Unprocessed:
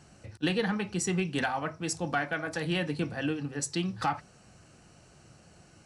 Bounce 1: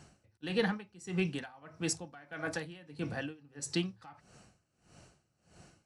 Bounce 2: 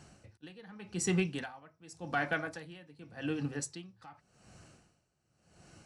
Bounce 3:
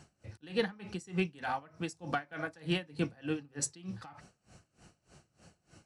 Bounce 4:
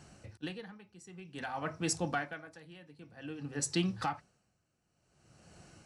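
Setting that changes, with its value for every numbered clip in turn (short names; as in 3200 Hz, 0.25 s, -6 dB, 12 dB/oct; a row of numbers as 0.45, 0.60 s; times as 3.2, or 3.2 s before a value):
dB-linear tremolo, rate: 1.6, 0.87, 3.3, 0.53 Hz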